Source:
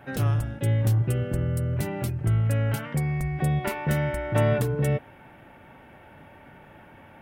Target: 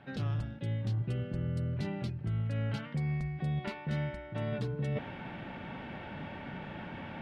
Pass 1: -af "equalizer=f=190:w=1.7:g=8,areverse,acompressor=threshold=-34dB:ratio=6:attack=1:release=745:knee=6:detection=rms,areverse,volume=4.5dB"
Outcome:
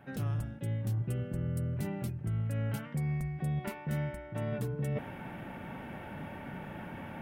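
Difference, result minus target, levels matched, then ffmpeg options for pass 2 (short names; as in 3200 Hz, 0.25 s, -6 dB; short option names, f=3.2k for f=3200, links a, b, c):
4000 Hz band -5.5 dB
-af "lowpass=f=4.2k:t=q:w=2.4,equalizer=f=190:w=1.7:g=8,areverse,acompressor=threshold=-34dB:ratio=6:attack=1:release=745:knee=6:detection=rms,areverse,volume=4.5dB"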